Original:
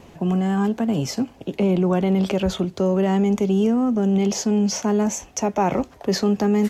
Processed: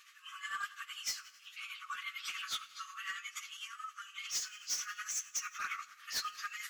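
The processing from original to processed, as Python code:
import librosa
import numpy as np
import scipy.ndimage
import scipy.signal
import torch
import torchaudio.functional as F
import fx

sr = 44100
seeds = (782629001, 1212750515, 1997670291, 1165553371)

y = fx.phase_scramble(x, sr, seeds[0], window_ms=50)
y = fx.brickwall_highpass(y, sr, low_hz=1100.0)
y = np.clip(y, -10.0 ** (-29.5 / 20.0), 10.0 ** (-29.5 / 20.0))
y = fx.rev_plate(y, sr, seeds[1], rt60_s=1.9, hf_ratio=0.85, predelay_ms=0, drr_db=15.0)
y = y * (1.0 - 0.56 / 2.0 + 0.56 / 2.0 * np.cos(2.0 * np.pi * 11.0 * (np.arange(len(y)) / sr)))
y = F.gain(torch.from_numpy(y), -1.5).numpy()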